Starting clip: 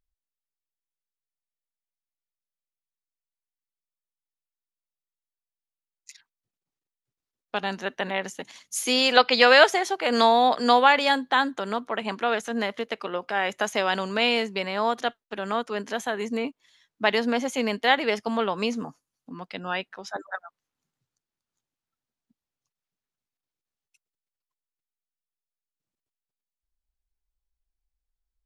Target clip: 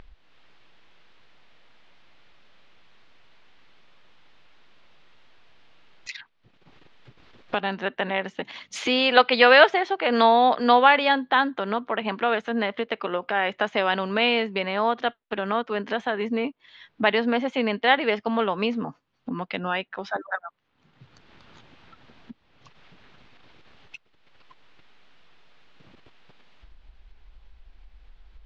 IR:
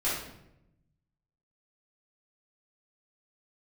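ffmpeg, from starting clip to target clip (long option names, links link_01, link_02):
-af "lowpass=frequency=3600:width=0.5412,lowpass=frequency=3600:width=1.3066,acompressor=mode=upward:threshold=-23dB:ratio=2.5,volume=1.5dB"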